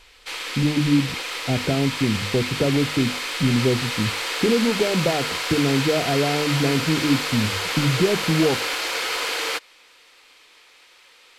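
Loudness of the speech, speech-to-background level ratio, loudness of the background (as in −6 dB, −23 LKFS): −23.0 LKFS, 2.0 dB, −25.0 LKFS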